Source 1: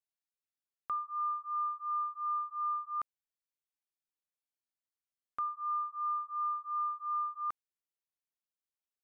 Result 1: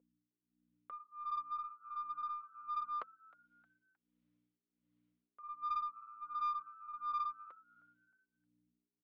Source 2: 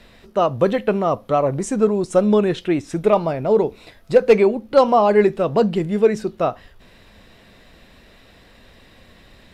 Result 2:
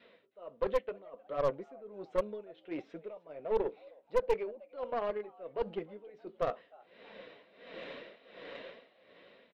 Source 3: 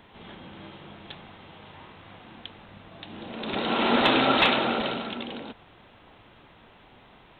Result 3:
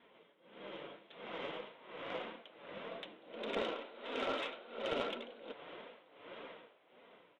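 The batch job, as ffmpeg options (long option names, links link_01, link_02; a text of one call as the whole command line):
ffmpeg -i in.wav -filter_complex "[0:a]adynamicequalizer=threshold=0.0316:dfrequency=530:dqfactor=3.1:tfrequency=530:tqfactor=3.1:attack=5:release=100:ratio=0.375:range=1.5:mode=cutabove:tftype=bell,dynaudnorm=framelen=110:gausssize=17:maxgain=16dB,alimiter=limit=-7.5dB:level=0:latency=1:release=428,areverse,acompressor=threshold=-26dB:ratio=5,areverse,aeval=exprs='val(0)+0.002*(sin(2*PI*60*n/s)+sin(2*PI*2*60*n/s)/2+sin(2*PI*3*60*n/s)/3+sin(2*PI*4*60*n/s)/4+sin(2*PI*5*60*n/s)/5)':channel_layout=same,tremolo=f=1.4:d=0.89,flanger=delay=4.2:depth=2.9:regen=-33:speed=1.7:shape=sinusoidal,highpass=410,equalizer=frequency=510:width_type=q:width=4:gain=7,equalizer=frequency=810:width_type=q:width=4:gain=-10,equalizer=frequency=1200:width_type=q:width=4:gain=-4,equalizer=frequency=1700:width_type=q:width=4:gain=-6,equalizer=frequency=2600:width_type=q:width=4:gain=-4,lowpass=frequency=3100:width=0.5412,lowpass=frequency=3100:width=1.3066,asplit=4[link_01][link_02][link_03][link_04];[link_02]adelay=311,afreqshift=110,volume=-22dB[link_05];[link_03]adelay=622,afreqshift=220,volume=-30.2dB[link_06];[link_04]adelay=933,afreqshift=330,volume=-38.4dB[link_07];[link_01][link_05][link_06][link_07]amix=inputs=4:normalize=0,aeval=exprs='0.075*(cos(1*acos(clip(val(0)/0.075,-1,1)))-cos(1*PI/2))+0.0237*(cos(2*acos(clip(val(0)/0.075,-1,1)))-cos(2*PI/2))+0.00211*(cos(7*acos(clip(val(0)/0.075,-1,1)))-cos(7*PI/2))+0.00237*(cos(8*acos(clip(val(0)/0.075,-1,1)))-cos(8*PI/2))':channel_layout=same" out.wav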